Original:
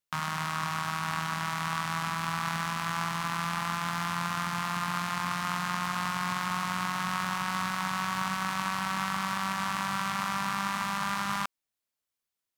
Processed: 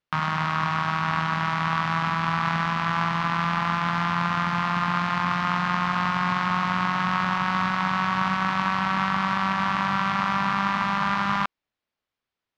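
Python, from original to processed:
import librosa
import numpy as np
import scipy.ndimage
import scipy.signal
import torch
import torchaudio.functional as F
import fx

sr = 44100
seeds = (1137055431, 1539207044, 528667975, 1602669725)

y = fx.air_absorb(x, sr, metres=220.0)
y = y * 10.0 ** (8.5 / 20.0)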